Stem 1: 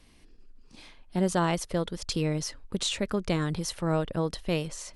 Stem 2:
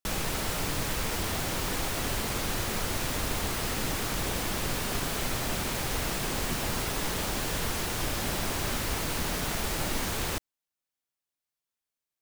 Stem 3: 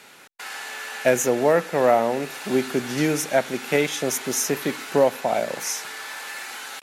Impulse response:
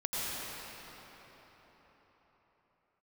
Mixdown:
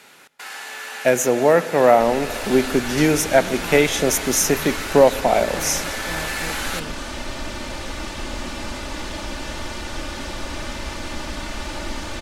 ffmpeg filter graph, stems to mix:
-filter_complex "[0:a]adelay=2250,volume=-14.5dB[link_01];[1:a]lowpass=6400,aecho=1:1:3.4:0.65,adelay=1950,volume=-11.5dB,asplit=2[link_02][link_03];[link_03]volume=-10.5dB[link_04];[2:a]volume=-0.5dB,asplit=2[link_05][link_06];[link_06]volume=-22.5dB[link_07];[3:a]atrim=start_sample=2205[link_08];[link_04][link_07]amix=inputs=2:normalize=0[link_09];[link_09][link_08]afir=irnorm=-1:irlink=0[link_10];[link_01][link_02][link_05][link_10]amix=inputs=4:normalize=0,dynaudnorm=framelen=150:gausssize=17:maxgain=9dB"

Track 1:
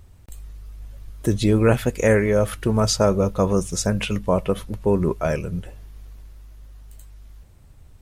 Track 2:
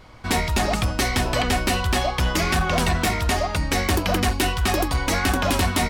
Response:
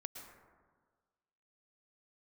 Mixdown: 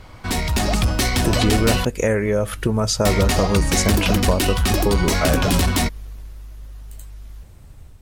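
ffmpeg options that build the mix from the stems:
-filter_complex "[0:a]acompressor=threshold=-23dB:ratio=4,volume=2.5dB[link_01];[1:a]acrossover=split=340|3000[link_02][link_03][link_04];[link_03]acompressor=threshold=-32dB:ratio=2[link_05];[link_02][link_05][link_04]amix=inputs=3:normalize=0,asoftclip=type=tanh:threshold=-18dB,volume=2.5dB,asplit=3[link_06][link_07][link_08];[link_06]atrim=end=1.85,asetpts=PTS-STARTPTS,afade=type=out:start_time=1.846:duration=0.004:curve=hsin[link_09];[link_07]atrim=start=1.85:end=3.05,asetpts=PTS-STARTPTS,volume=0[link_10];[link_08]atrim=start=3.05,asetpts=PTS-STARTPTS,afade=type=in:duration=0.004:curve=hsin[link_11];[link_09][link_10][link_11]concat=n=3:v=0:a=1[link_12];[link_01][link_12]amix=inputs=2:normalize=0,dynaudnorm=framelen=340:gausssize=3:maxgain=4dB"

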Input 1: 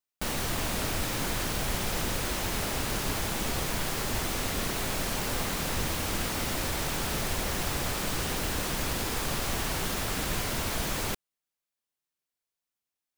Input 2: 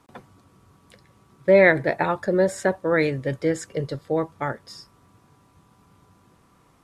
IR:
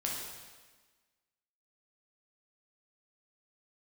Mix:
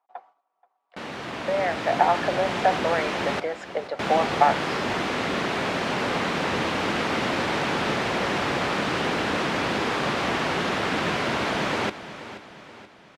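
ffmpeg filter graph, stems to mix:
-filter_complex "[0:a]adelay=750,volume=-2dB,asplit=3[link_01][link_02][link_03];[link_01]atrim=end=3.4,asetpts=PTS-STARTPTS,afade=type=out:start_time=3.396:duration=0.004:curve=hsin[link_04];[link_02]atrim=start=3.4:end=3.99,asetpts=PTS-STARTPTS,volume=0[link_05];[link_03]atrim=start=3.99,asetpts=PTS-STARTPTS,afade=type=in:duration=0.004:curve=hsin[link_06];[link_04][link_05][link_06]concat=n=3:v=0:a=1,asplit=2[link_07][link_08];[link_08]volume=-14dB[link_09];[1:a]agate=range=-17dB:threshold=-51dB:ratio=16:detection=peak,acompressor=threshold=-26dB:ratio=6,highpass=frequency=740:width_type=q:width=6.6,volume=-5.5dB,asplit=2[link_10][link_11];[link_11]volume=-24dB[link_12];[link_09][link_12]amix=inputs=2:normalize=0,aecho=0:1:479|958|1437|1916|2395|2874|3353:1|0.48|0.23|0.111|0.0531|0.0255|0.0122[link_13];[link_07][link_10][link_13]amix=inputs=3:normalize=0,dynaudnorm=framelen=200:gausssize=17:maxgain=11.5dB,highpass=190,lowpass=2900"

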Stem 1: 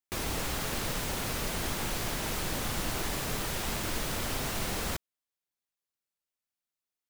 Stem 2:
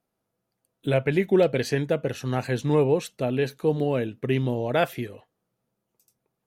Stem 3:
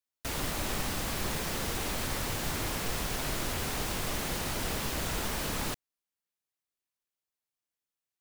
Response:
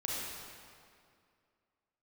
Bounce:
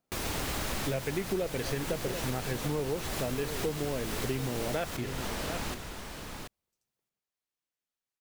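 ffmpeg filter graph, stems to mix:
-filter_complex "[0:a]volume=-1dB,asplit=2[link_01][link_02];[link_02]volume=-19.5dB[link_03];[1:a]lowpass=8000,volume=-3dB,asplit=3[link_04][link_05][link_06];[link_05]volume=-14dB[link_07];[2:a]highshelf=frequency=8000:gain=-6.5,volume=-1dB,asplit=2[link_08][link_09];[link_09]volume=-7dB[link_10];[link_06]apad=whole_len=361777[link_11];[link_08][link_11]sidechaincompress=threshold=-39dB:ratio=8:attack=16:release=245[link_12];[3:a]atrim=start_sample=2205[link_13];[link_03][link_13]afir=irnorm=-1:irlink=0[link_14];[link_07][link_10]amix=inputs=2:normalize=0,aecho=0:1:732:1[link_15];[link_01][link_04][link_12][link_14][link_15]amix=inputs=5:normalize=0,acompressor=threshold=-29dB:ratio=5"

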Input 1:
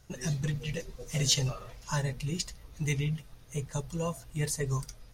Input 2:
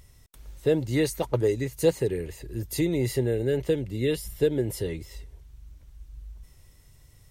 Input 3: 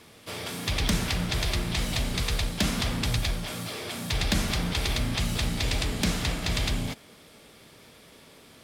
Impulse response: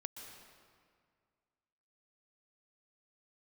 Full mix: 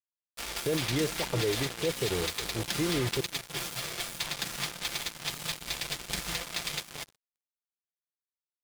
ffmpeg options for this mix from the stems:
-filter_complex "[0:a]acompressor=mode=upward:threshold=-32dB:ratio=2.5,afwtdn=0.0141,acompressor=threshold=-32dB:ratio=16,adelay=2350,volume=-8dB,asplit=2[link_01][link_02];[link_02]volume=-6dB[link_03];[1:a]lowpass=4300,volume=-3dB,asplit=3[link_04][link_05][link_06];[link_04]atrim=end=3.21,asetpts=PTS-STARTPTS,afade=type=out:start_time=3.206:duration=0.004:curve=hsin[link_07];[link_05]atrim=start=3.21:end=5.62,asetpts=PTS-STARTPTS,volume=0[link_08];[link_06]atrim=start=5.62,asetpts=PTS-STARTPTS,afade=type=in:duration=0.004:curve=hsin[link_09];[link_07][link_08][link_09]concat=n=3:v=0:a=1,asplit=3[link_10][link_11][link_12];[link_11]volume=-16dB[link_13];[2:a]acompressor=threshold=-27dB:ratio=6,highpass=frequency=870:poles=1,aecho=1:1:5.8:0.67,adelay=100,volume=1dB,asplit=2[link_14][link_15];[link_15]volume=-20dB[link_16];[link_12]apad=whole_len=329948[link_17];[link_01][link_17]sidechaincompress=threshold=-36dB:ratio=8:attack=16:release=265[link_18];[link_03][link_13][link_16]amix=inputs=3:normalize=0,aecho=0:1:368|736|1104|1472|1840|2208|2576:1|0.48|0.23|0.111|0.0531|0.0255|0.0122[link_19];[link_18][link_10][link_14][link_19]amix=inputs=4:normalize=0,acrusher=bits=4:mix=0:aa=0.5,alimiter=limit=-20dB:level=0:latency=1:release=20"

